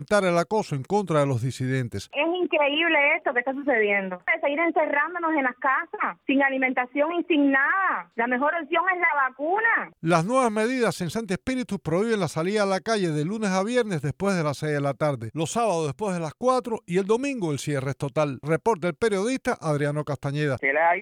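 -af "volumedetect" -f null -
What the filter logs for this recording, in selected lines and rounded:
mean_volume: -24.2 dB
max_volume: -7.2 dB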